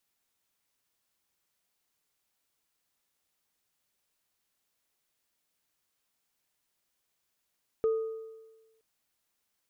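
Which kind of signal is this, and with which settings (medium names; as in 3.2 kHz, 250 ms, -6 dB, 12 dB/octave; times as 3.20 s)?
sine partials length 0.97 s, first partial 445 Hz, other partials 1.24 kHz, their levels -18.5 dB, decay 1.24 s, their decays 1.01 s, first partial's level -22 dB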